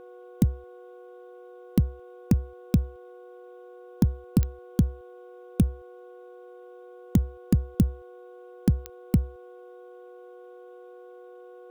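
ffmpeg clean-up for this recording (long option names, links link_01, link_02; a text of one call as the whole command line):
ffmpeg -i in.wav -af "adeclick=threshold=4,bandreject=frequency=365.3:width_type=h:width=4,bandreject=frequency=730.6:width_type=h:width=4,bandreject=frequency=1095.9:width_type=h:width=4,bandreject=frequency=1461.2:width_type=h:width=4,bandreject=frequency=490:width=30,agate=range=-21dB:threshold=-39dB" out.wav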